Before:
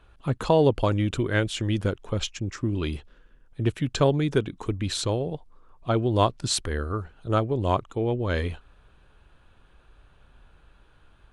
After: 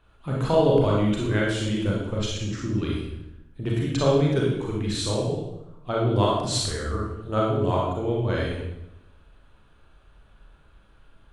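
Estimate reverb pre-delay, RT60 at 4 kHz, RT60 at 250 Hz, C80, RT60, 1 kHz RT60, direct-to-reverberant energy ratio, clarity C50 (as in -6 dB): 31 ms, 0.70 s, 1.1 s, 3.5 dB, 0.85 s, 0.80 s, -4.0 dB, 0.0 dB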